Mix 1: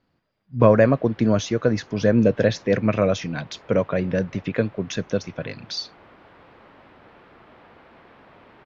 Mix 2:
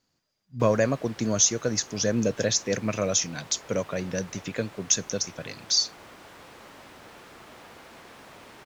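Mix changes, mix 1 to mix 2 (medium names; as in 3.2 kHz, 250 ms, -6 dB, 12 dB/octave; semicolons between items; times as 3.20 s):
speech -8.5 dB; master: remove distance through air 380 m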